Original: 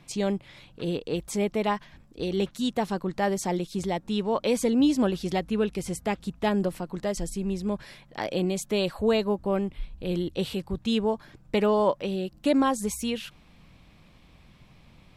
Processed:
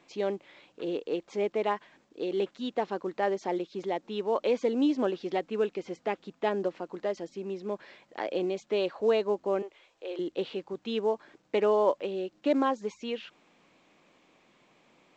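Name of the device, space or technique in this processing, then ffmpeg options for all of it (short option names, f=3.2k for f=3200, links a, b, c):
telephone: -filter_complex "[0:a]asettb=1/sr,asplit=3[a][b][c];[a]atrim=end=9.624[d];[b]atrim=start=9.62:end=10.19,asetpts=PTS-STARTPTS,afade=t=in:d=0.004:c=qsin,afade=t=out:st=0.566:d=0.004:c=qsin,highpass=f=430:w=0.5412,highpass=f=430:w=1.3066[e];[c]atrim=start=10.186[f];[d][e]acrossfade=d=0.004:c1=hsin:c2=qsin[g];[g][f]acrossfade=d=0.004:c1=qsin:c2=hsin,highpass=390,lowpass=3.2k,equalizer=f=340:t=o:w=1.4:g=6.5,volume=-3.5dB" -ar 16000 -c:a pcm_alaw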